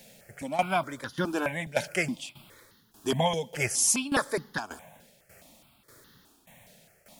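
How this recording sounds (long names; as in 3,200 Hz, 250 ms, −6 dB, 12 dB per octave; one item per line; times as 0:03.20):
a quantiser's noise floor 10 bits, dither none
tremolo saw down 1.7 Hz, depth 80%
notches that jump at a steady rate 4.8 Hz 310–2,400 Hz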